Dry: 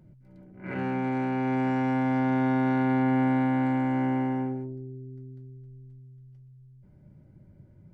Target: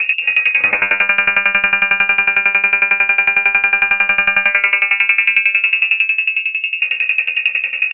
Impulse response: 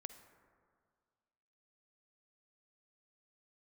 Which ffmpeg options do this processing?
-af "aecho=1:1:4.8:0.8,areverse,acompressor=threshold=-31dB:ratio=10,areverse,aeval=exprs='0.0531*sin(PI/2*2.24*val(0)/0.0531)':c=same,asetrate=68011,aresample=44100,atempo=0.64842,asoftclip=type=tanh:threshold=-33.5dB,aecho=1:1:991:0.119,lowpass=f=2.4k:t=q:w=0.5098,lowpass=f=2.4k:t=q:w=0.6013,lowpass=f=2.4k:t=q:w=0.9,lowpass=f=2.4k:t=q:w=2.563,afreqshift=-2800,alimiter=level_in=32.5dB:limit=-1dB:release=50:level=0:latency=1,aeval=exprs='val(0)*pow(10,-19*if(lt(mod(11*n/s,1),2*abs(11)/1000),1-mod(11*n/s,1)/(2*abs(11)/1000),(mod(11*n/s,1)-2*abs(11)/1000)/(1-2*abs(11)/1000))/20)':c=same"

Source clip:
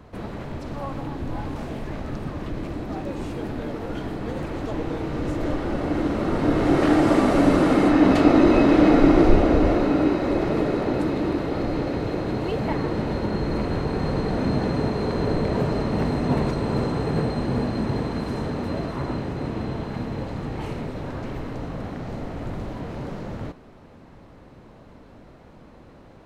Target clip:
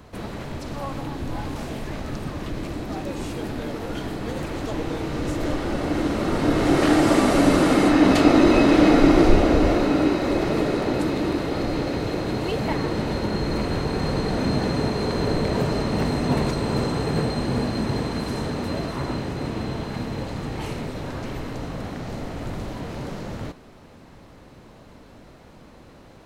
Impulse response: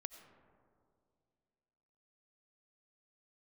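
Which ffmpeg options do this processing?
-af "highshelf=f=3.1k:g=10.5"

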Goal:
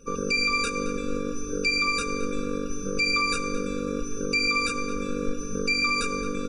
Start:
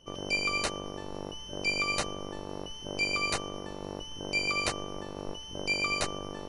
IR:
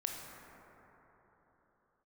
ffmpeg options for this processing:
-filter_complex "[0:a]bandreject=f=60:t=h:w=6,bandreject=f=120:t=h:w=6,bandreject=f=180:t=h:w=6,bandreject=f=240:t=h:w=6,aecho=1:1:4.3:0.9,alimiter=level_in=1dB:limit=-24dB:level=0:latency=1:release=146,volume=-1dB,asplit=2[a][b];[b]adelay=221,lowpass=f=3.2k:p=1,volume=-10.5dB,asplit=2[c][d];[d]adelay=221,lowpass=f=3.2k:p=1,volume=0.55,asplit=2[e][f];[f]adelay=221,lowpass=f=3.2k:p=1,volume=0.55,asplit=2[g][h];[h]adelay=221,lowpass=f=3.2k:p=1,volume=0.55,asplit=2[i][j];[j]adelay=221,lowpass=f=3.2k:p=1,volume=0.55,asplit=2[k][l];[l]adelay=221,lowpass=f=3.2k:p=1,volume=0.55[m];[a][c][e][g][i][k][m]amix=inputs=7:normalize=0,asplit=2[n][o];[1:a]atrim=start_sample=2205,asetrate=31752,aresample=44100[p];[o][p]afir=irnorm=-1:irlink=0,volume=-7.5dB[q];[n][q]amix=inputs=2:normalize=0,afftfilt=real='re*eq(mod(floor(b*sr/1024/560),2),0)':imag='im*eq(mod(floor(b*sr/1024/560),2),0)':win_size=1024:overlap=0.75,volume=6.5dB"

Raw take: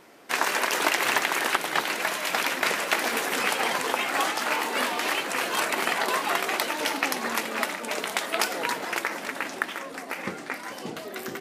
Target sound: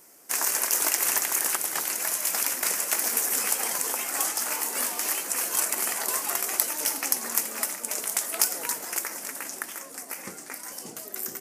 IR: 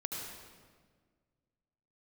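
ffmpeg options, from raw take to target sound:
-af "aexciter=amount=6.5:drive=7.2:freq=5.4k,volume=-8.5dB"

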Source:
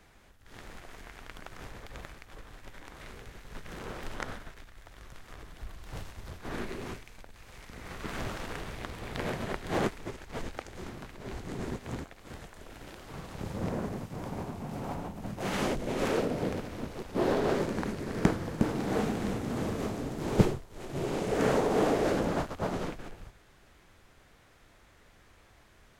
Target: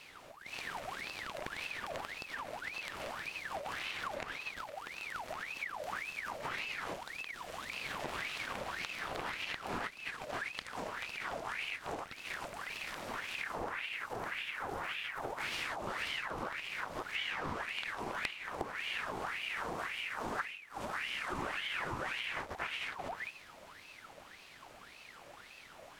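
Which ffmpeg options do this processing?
-af "acompressor=threshold=-42dB:ratio=6,aeval=exprs='val(0)*sin(2*PI*1600*n/s+1600*0.65/1.8*sin(2*PI*1.8*n/s))':c=same,volume=7.5dB"

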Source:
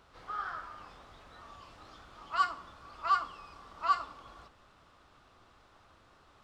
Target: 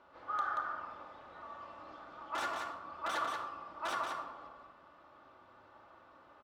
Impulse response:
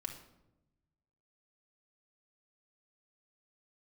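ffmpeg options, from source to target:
-filter_complex "[0:a]aeval=exprs='(mod(23.7*val(0)+1,2)-1)/23.7':c=same,bandpass=f=730:t=q:w=0.73:csg=0,aecho=1:1:181:0.562[a];[1:a]atrim=start_sample=2205[b];[a][b]afir=irnorm=-1:irlink=0,volume=5dB"

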